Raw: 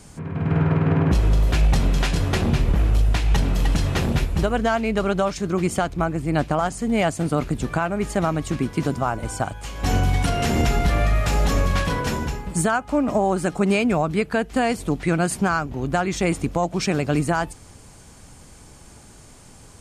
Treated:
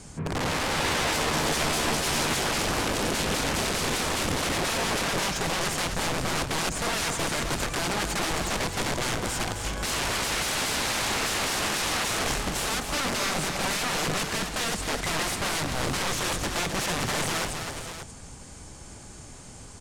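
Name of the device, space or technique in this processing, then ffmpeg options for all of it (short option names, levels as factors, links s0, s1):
overflowing digital effects unit: -filter_complex "[0:a]equalizer=f=7100:w=1.5:g=3.5,aeval=exprs='(mod(14.1*val(0)+1,2)-1)/14.1':c=same,lowpass=9800,asettb=1/sr,asplit=3[s0][s1][s2];[s0]atrim=end=0.764[s3];[s1]atrim=start=0.76:end=2.37,asetpts=PTS-STARTPTS,afade=t=in:d=0.004:c=qsin,afade=t=out:st=1.606:d=0.004:c=qsin,asplit=2[s4][s5];[s5]adelay=13,volume=0.596[s6];[s4][s6]amix=inputs=2:normalize=0,atrim=end_sample=71001[s7];[s2]atrim=start=2.366[s8];[s3][s7]acrossfade=d=0.004:c1=hsin:c2=qsin[s9];[s9][s8]acrossfade=d=0.004:c1=qsin:c2=hsin,aecho=1:1:260|475|582:0.447|0.224|0.282"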